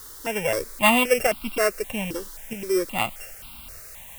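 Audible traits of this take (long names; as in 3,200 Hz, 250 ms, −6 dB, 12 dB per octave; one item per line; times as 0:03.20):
a buzz of ramps at a fixed pitch in blocks of 16 samples
tremolo saw up 0.79 Hz, depth 60%
a quantiser's noise floor 8 bits, dither triangular
notches that jump at a steady rate 3.8 Hz 670–1,800 Hz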